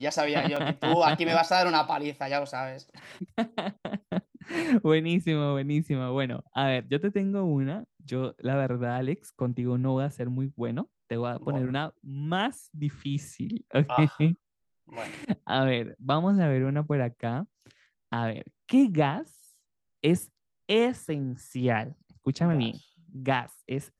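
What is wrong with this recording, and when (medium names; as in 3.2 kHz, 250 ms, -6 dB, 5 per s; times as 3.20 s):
0.56 s: dropout 4.4 ms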